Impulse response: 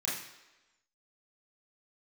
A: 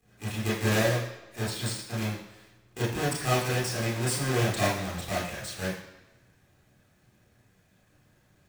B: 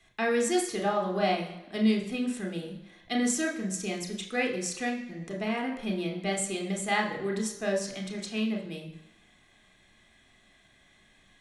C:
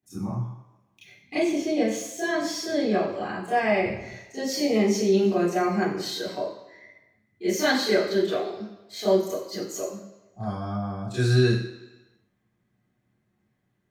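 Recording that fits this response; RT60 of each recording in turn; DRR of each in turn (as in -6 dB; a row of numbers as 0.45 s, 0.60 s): A; 1.1 s, 1.1 s, 1.1 s; -7.0 dB, 1.5 dB, -13.0 dB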